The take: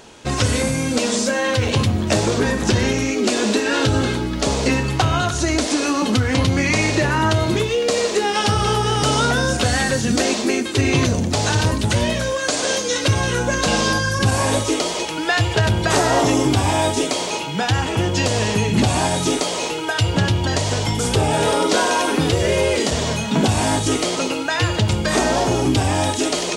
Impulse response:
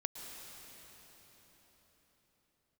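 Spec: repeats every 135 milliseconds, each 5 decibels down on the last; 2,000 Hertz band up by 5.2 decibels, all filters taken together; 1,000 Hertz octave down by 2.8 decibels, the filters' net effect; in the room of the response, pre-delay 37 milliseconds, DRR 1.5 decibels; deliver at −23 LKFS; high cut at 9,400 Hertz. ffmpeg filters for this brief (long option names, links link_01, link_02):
-filter_complex "[0:a]lowpass=9400,equalizer=frequency=1000:width_type=o:gain=-6,equalizer=frequency=2000:width_type=o:gain=8.5,aecho=1:1:135|270|405|540|675|810|945:0.562|0.315|0.176|0.0988|0.0553|0.031|0.0173,asplit=2[link_01][link_02];[1:a]atrim=start_sample=2205,adelay=37[link_03];[link_02][link_03]afir=irnorm=-1:irlink=0,volume=-1.5dB[link_04];[link_01][link_04]amix=inputs=2:normalize=0,volume=-9.5dB"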